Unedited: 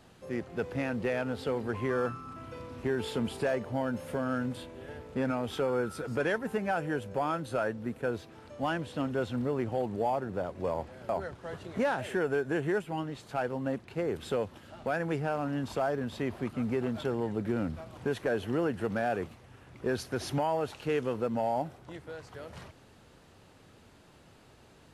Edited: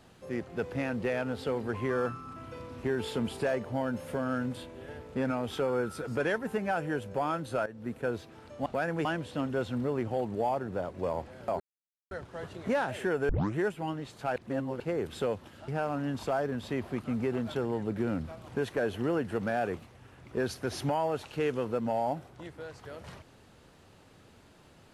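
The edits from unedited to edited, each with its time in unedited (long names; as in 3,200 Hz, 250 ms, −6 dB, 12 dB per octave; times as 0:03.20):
0:07.66–0:07.92: fade in, from −16.5 dB
0:11.21: splice in silence 0.51 s
0:12.39: tape start 0.27 s
0:13.46–0:13.90: reverse
0:14.78–0:15.17: move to 0:08.66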